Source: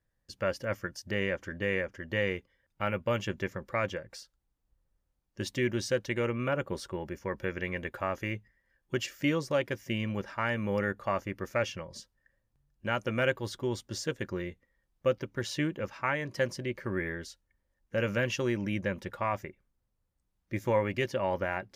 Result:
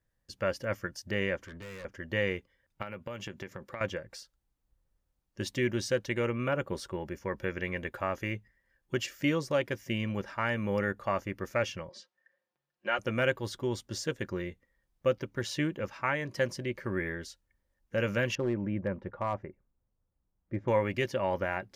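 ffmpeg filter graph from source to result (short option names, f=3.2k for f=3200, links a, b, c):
-filter_complex "[0:a]asettb=1/sr,asplit=3[a][b][c];[a]atrim=end=1.424[d];[b]atrim=start=1.42:end=1.85,asetpts=PTS-STARTPTS,afade=t=in:d=0.004:c=qsin,afade=t=out:st=0.426:d=0.004:c=qsin,acrossover=split=220|3000[e][f][g];[f]acompressor=threshold=-43dB:ratio=1.5:attack=3.2:release=140:knee=2.83:detection=peak[h];[e][h][g]amix=inputs=3:normalize=0,aeval=exprs='(tanh(112*val(0)+0.2)-tanh(0.2))/112':c=same,asuperstop=centerf=780:order=4:qfactor=5.6[i];[c]atrim=start=1.846[j];[d][i]acrossfade=d=0.004:c1=hsin:c2=qsin[k];[k][j]acrossfade=d=0.004:c1=qsin:c2=hsin,asettb=1/sr,asplit=3[l][m][n];[l]atrim=end=2.824[o];[m]atrim=start=2.82:end=3.81,asetpts=PTS-STARTPTS,afade=t=in:d=0.004:c=qsin,afade=t=out:st=0.986:d=0.004:c=qsin,highpass=100,acompressor=threshold=-36dB:ratio=6:attack=3.2:release=140:knee=1:detection=peak[p];[n]atrim=start=3.806[q];[o][p]acrossfade=d=0.004:c1=hsin:c2=qsin[r];[r][q]acrossfade=d=0.004:c1=qsin:c2=hsin,asettb=1/sr,asplit=3[s][t][u];[s]atrim=end=11.894[v];[t]atrim=start=11.89:end=12.99,asetpts=PTS-STARTPTS,afade=t=in:d=0.004:c=qsin,afade=t=out:st=1.096:d=0.004:c=qsin,highpass=430,lowpass=4.3k,aecho=1:1:5.6:0.64,atrim=end_sample=48510[w];[u]atrim=start=12.986[x];[v][w]acrossfade=d=0.004:c1=hsin:c2=qsin[y];[y][x]acrossfade=d=0.004:c1=qsin:c2=hsin,asettb=1/sr,asplit=3[z][aa][ab];[z]atrim=end=18.354[ac];[aa]atrim=start=18.35:end=20.68,asetpts=PTS-STARTPTS,afade=t=in:d=0.004:c=qsin,afade=t=out:st=2.326:d=0.004:c=qsin,lowpass=1.2k,volume=23.5dB,asoftclip=hard,volume=-23.5dB[ad];[ab]atrim=start=20.676[ae];[ac][ad]acrossfade=d=0.004:c1=hsin:c2=qsin[af];[af][ae]acrossfade=d=0.004:c1=qsin:c2=hsin"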